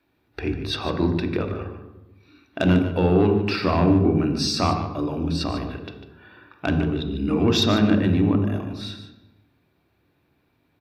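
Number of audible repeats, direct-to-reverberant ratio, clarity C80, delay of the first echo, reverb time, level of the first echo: 1, 4.5 dB, 8.0 dB, 148 ms, 1.1 s, −11.5 dB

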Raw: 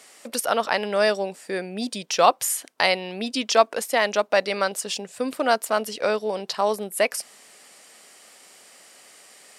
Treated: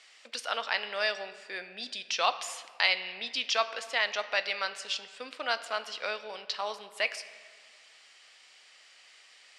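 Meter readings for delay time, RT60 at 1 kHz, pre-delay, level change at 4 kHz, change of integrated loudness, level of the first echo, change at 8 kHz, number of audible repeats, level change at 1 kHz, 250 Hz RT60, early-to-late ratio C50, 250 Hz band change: no echo audible, 1.7 s, 6 ms, −2.5 dB, −8.0 dB, no echo audible, −13.0 dB, no echo audible, −10.5 dB, 2.0 s, 13.0 dB, −22.5 dB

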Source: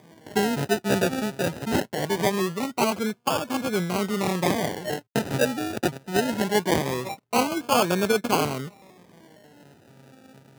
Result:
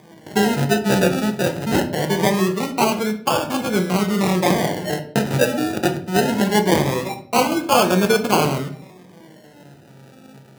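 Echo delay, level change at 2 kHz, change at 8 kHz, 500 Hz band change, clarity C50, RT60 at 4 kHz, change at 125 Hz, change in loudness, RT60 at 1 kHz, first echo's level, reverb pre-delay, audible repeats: no echo audible, +5.5 dB, +5.0 dB, +5.5 dB, 12.0 dB, 0.40 s, +8.0 dB, +6.0 dB, 0.45 s, no echo audible, 5 ms, no echo audible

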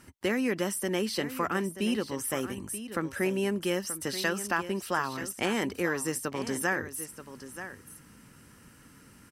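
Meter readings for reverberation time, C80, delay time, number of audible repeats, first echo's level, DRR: no reverb audible, no reverb audible, 931 ms, 1, −12.0 dB, no reverb audible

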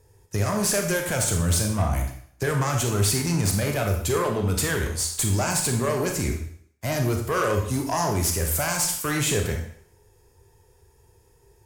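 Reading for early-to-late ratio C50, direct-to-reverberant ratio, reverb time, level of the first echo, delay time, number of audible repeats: 6.0 dB, 2.5 dB, 0.60 s, no echo audible, no echo audible, no echo audible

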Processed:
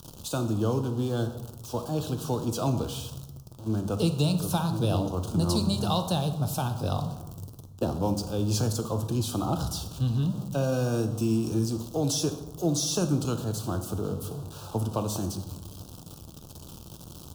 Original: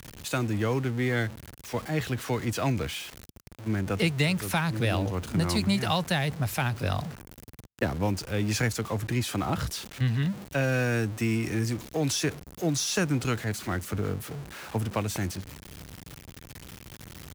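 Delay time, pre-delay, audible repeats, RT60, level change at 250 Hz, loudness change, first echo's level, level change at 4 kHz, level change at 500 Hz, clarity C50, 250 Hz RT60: no echo audible, 3 ms, no echo audible, 1.0 s, +1.0 dB, 0.0 dB, no echo audible, −1.0 dB, +1.0 dB, 10.5 dB, 1.3 s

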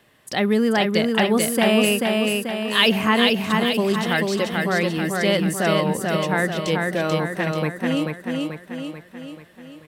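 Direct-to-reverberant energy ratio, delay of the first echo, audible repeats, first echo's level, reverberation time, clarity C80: no reverb audible, 437 ms, 6, −3.0 dB, no reverb audible, no reverb audible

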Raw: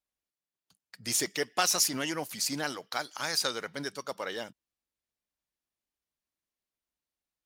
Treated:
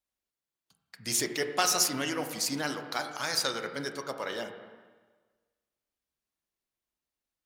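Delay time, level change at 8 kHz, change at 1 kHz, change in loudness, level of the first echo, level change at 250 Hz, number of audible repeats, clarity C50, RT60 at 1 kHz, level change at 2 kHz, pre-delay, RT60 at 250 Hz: no echo audible, 0.0 dB, +1.5 dB, +0.5 dB, no echo audible, +2.0 dB, no echo audible, 8.0 dB, 1.4 s, +1.0 dB, 6 ms, 1.4 s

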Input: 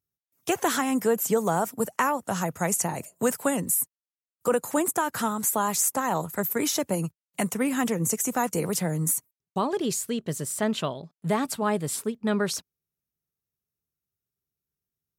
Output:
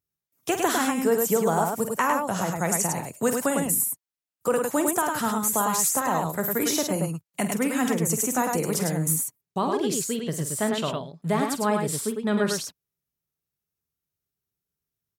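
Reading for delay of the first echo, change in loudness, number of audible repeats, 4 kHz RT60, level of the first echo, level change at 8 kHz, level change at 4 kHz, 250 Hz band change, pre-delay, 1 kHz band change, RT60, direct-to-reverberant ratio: 48 ms, +2.0 dB, 2, no reverb audible, −10.5 dB, +2.0 dB, +2.0 dB, +1.5 dB, no reverb audible, +2.0 dB, no reverb audible, no reverb audible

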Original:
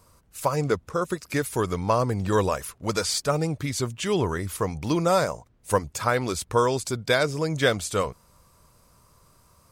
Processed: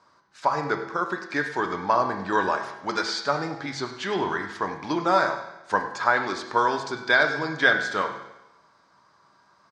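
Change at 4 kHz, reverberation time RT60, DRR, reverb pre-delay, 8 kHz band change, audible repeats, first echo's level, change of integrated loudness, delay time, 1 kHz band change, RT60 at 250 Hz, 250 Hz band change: −0.5 dB, 0.95 s, 3.5 dB, 6 ms, −11.5 dB, 4, −15.0 dB, +0.5 dB, 101 ms, +4.0 dB, 0.90 s, −3.0 dB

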